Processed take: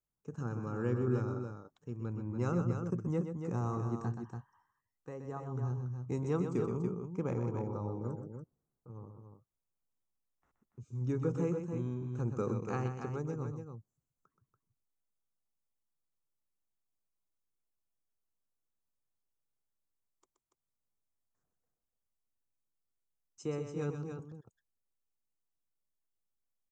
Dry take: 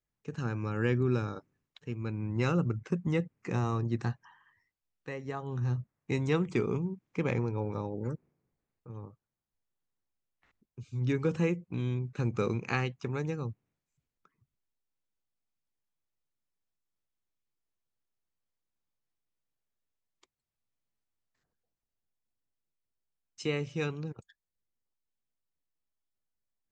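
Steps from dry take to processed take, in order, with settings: high-order bell 2.9 kHz -14 dB; loudspeakers at several distances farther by 43 m -8 dB, 98 m -7 dB; trim -4.5 dB

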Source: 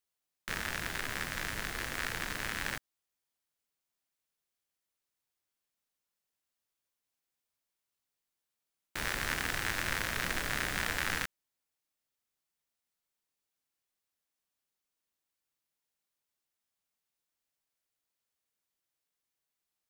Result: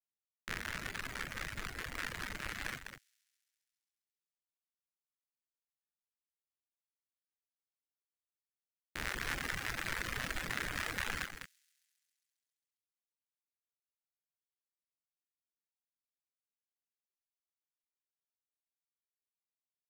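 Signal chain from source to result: local Wiener filter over 41 samples; on a send: loudspeakers at several distances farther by 15 m -10 dB, 69 m -4 dB; on the sum: companded quantiser 8-bit; feedback echo behind a high-pass 135 ms, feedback 67%, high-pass 5.5 kHz, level -13 dB; reverb removal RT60 1.3 s; trim -2.5 dB

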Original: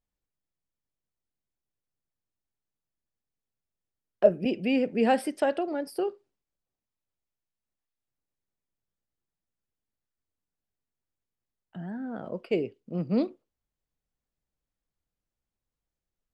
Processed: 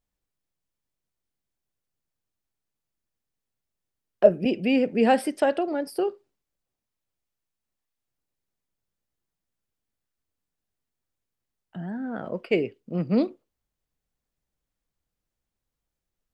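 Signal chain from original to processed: 12.02–13.15 s: dynamic bell 1.9 kHz, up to +8 dB, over -53 dBFS, Q 1.4; trim +3.5 dB

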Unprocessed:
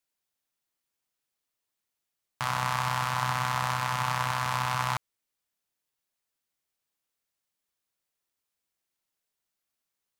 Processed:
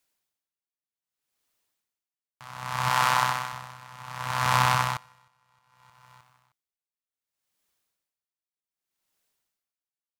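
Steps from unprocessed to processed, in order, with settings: 2.90–3.53 s: high-pass 280 Hz 6 dB/octave; feedback delay 310 ms, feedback 56%, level -19.5 dB; logarithmic tremolo 0.65 Hz, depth 25 dB; trim +8 dB

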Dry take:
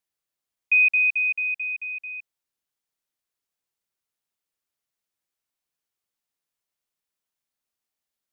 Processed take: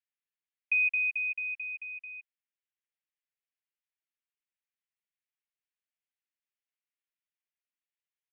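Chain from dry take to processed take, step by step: Butterworth band-pass 2.2 kHz, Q 1.5; comb 7 ms, depth 32%; trim -5.5 dB

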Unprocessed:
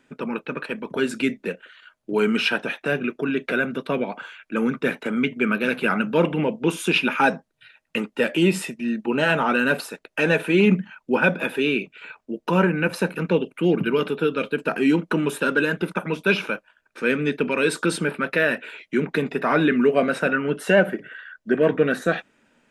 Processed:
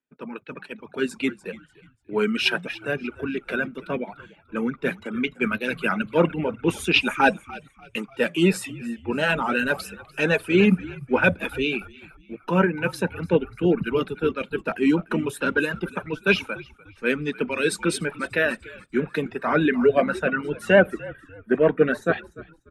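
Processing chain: frequency-shifting echo 295 ms, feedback 52%, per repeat -47 Hz, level -12.5 dB; reverb removal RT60 0.8 s; three bands expanded up and down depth 70%; trim -1.5 dB

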